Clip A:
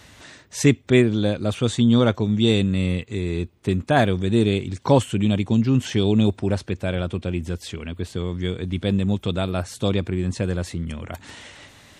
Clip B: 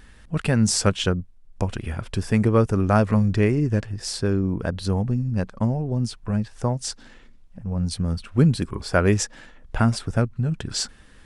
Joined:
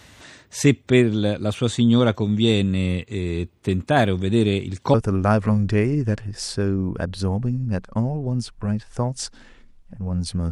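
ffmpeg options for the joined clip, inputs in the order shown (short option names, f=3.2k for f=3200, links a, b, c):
-filter_complex "[0:a]apad=whole_dur=10.51,atrim=end=10.51,atrim=end=4.942[a];[1:a]atrim=start=2.588:end=8.16[b];[a][b]acrossfade=d=0.004:c1=hsin:c2=hsin"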